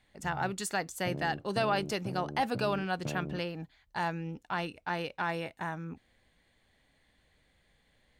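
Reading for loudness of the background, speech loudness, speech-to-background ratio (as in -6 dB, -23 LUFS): -42.5 LUFS, -34.5 LUFS, 8.0 dB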